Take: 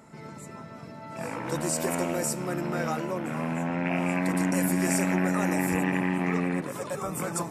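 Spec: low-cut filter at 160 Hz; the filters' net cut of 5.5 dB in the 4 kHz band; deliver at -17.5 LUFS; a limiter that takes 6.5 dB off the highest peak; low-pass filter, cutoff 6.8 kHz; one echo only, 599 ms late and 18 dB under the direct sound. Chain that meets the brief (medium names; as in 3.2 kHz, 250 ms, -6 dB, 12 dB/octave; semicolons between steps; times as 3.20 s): high-pass 160 Hz; low-pass 6.8 kHz; peaking EQ 4 kHz -7.5 dB; peak limiter -19 dBFS; delay 599 ms -18 dB; trim +13.5 dB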